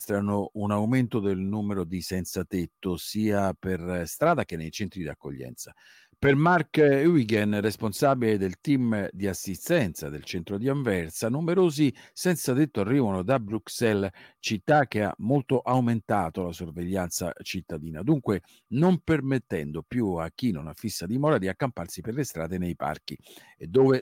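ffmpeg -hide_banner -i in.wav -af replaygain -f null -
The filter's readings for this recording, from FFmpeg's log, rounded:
track_gain = +5.6 dB
track_peak = 0.195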